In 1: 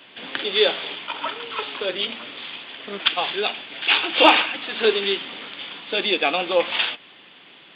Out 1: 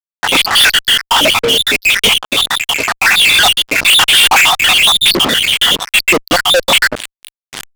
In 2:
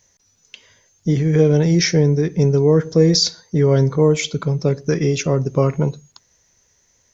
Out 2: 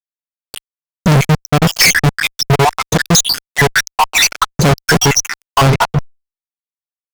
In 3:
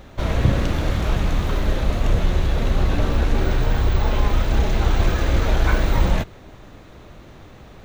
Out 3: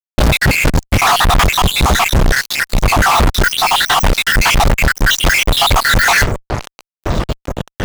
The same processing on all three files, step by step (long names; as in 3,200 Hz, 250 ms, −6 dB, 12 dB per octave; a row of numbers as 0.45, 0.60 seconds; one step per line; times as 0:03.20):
time-frequency cells dropped at random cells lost 78%
fuzz pedal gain 43 dB, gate −45 dBFS
reversed playback
upward compression, threshold −24 dBFS
reversed playback
dynamic equaliser 350 Hz, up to −4 dB, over −30 dBFS, Q 1.3
normalise the peak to −3 dBFS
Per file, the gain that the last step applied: +7.0, +6.5, +5.5 decibels